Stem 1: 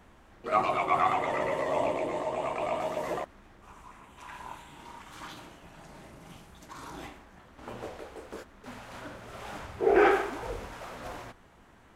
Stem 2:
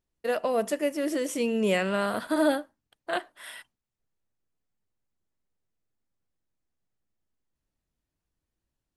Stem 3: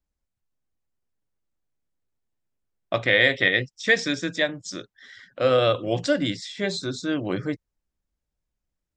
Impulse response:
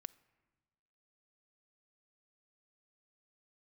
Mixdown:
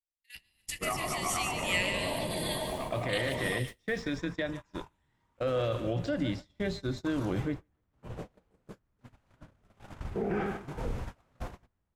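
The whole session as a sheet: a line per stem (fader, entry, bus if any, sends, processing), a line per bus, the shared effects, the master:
-2.0 dB, 0.35 s, bus A, no send, echo send -22 dB, octaver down 1 oct, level +3 dB; compressor 3:1, threshold -32 dBFS, peak gain reduction 12 dB
+3.0 dB, 0.00 s, no bus, no send, echo send -7 dB, elliptic high-pass 2000 Hz, stop band 40 dB; sustainer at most 84 dB/s
-5.5 dB, 0.00 s, bus A, no send, echo send -16.5 dB, de-esser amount 75%; high shelf 5300 Hz -11 dB
bus A: 0.0 dB, low shelf 200 Hz +7.5 dB; limiter -22 dBFS, peak gain reduction 8 dB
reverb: off
echo: feedback echo 0.147 s, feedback 47%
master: gate -36 dBFS, range -29 dB

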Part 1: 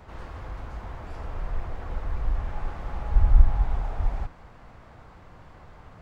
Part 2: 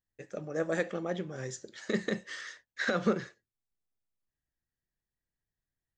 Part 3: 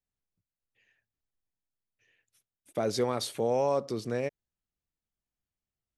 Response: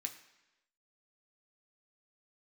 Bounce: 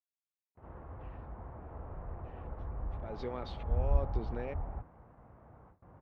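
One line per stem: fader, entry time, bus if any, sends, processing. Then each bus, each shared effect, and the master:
-6.0 dB, 0.55 s, no bus, no send, LPF 1000 Hz 12 dB/oct; gate with hold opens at -41 dBFS; HPF 55 Hz
off
+1.5 dB, 0.25 s, bus A, no send, auto swell 0.365 s
bus A: 0.0 dB, bit-crush 12-bit; compressor 2:1, threshold -45 dBFS, peak gain reduction 12.5 dB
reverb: off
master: LPF 3400 Hz 24 dB/oct

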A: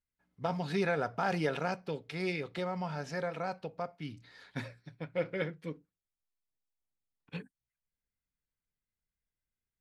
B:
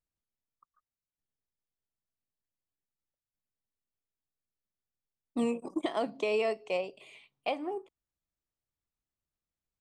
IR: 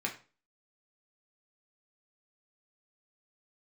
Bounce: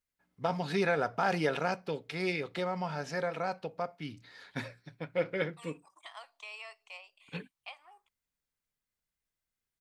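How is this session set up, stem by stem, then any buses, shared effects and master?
+3.0 dB, 0.00 s, no send, low shelf 180 Hz -6.5 dB
-7.0 dB, 0.20 s, no send, HPF 1000 Hz 24 dB/oct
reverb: off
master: dry

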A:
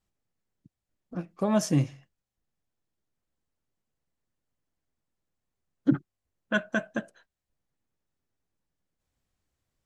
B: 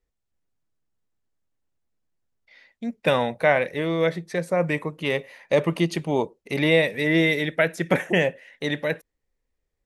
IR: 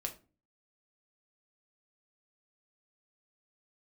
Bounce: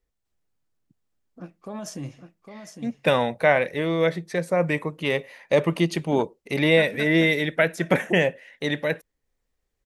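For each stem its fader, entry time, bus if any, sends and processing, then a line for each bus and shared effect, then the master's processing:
-3.0 dB, 0.25 s, no send, echo send -7.5 dB, low shelf 130 Hz -8 dB; limiter -22.5 dBFS, peak gain reduction 10.5 dB
+0.5 dB, 0.00 s, no send, no echo send, dry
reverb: off
echo: echo 0.806 s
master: dry

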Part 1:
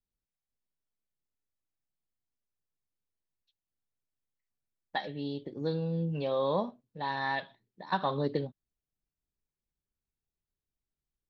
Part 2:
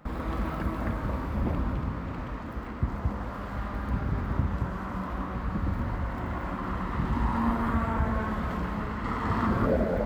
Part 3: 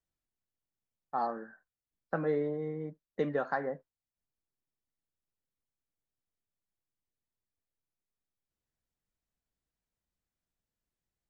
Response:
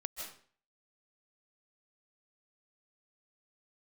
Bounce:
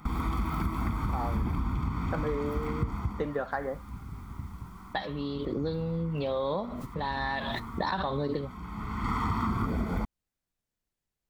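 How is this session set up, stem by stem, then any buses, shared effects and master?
+1.5 dB, 0.00 s, no send, gate -55 dBFS, range -12 dB; backwards sustainer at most 23 dB/s
+1.0 dB, 0.00 s, no send, high shelf 4400 Hz +7.5 dB; comb 0.9 ms, depth 87%; auto duck -18 dB, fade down 0.55 s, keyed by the first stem
+2.0 dB, 0.00 s, no send, vibrato 0.31 Hz 27 cents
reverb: off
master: compressor 6:1, threshold -26 dBFS, peak gain reduction 10.5 dB

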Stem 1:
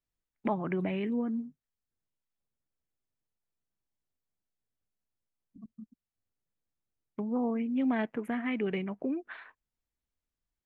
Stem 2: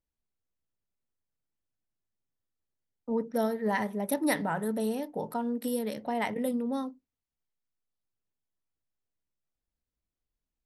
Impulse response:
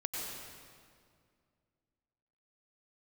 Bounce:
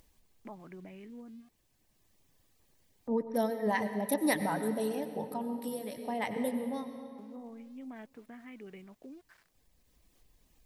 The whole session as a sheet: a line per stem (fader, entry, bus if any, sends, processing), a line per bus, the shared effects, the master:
-16.5 dB, 0.00 s, no send, sample gate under -45.5 dBFS
-3.0 dB, 0.00 s, send -8 dB, notch 1400 Hz, Q 5.4; reverb removal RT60 0.77 s; upward compressor, threshold -45 dBFS; auto duck -8 dB, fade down 0.75 s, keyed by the first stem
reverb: on, RT60 2.1 s, pre-delay 86 ms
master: dry

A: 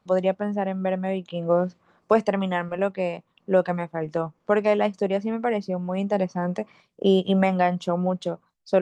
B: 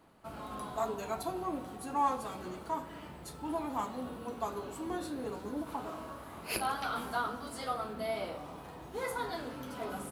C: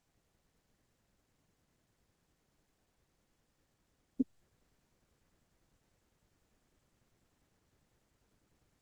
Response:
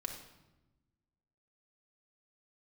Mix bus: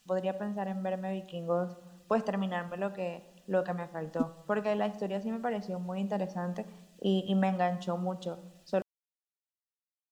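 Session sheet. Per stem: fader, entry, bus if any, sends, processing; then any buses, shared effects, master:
-11.0 dB, 0.00 s, send -5 dB, dry
off
+1.0 dB, 0.00 s, no send, resonant high shelf 1600 Hz +12.5 dB, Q 1.5; comb 4.6 ms, depth 70%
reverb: on, RT60 1.0 s, pre-delay 4 ms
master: bell 420 Hz -3.5 dB 0.83 oct; notch 2200 Hz, Q 5.6

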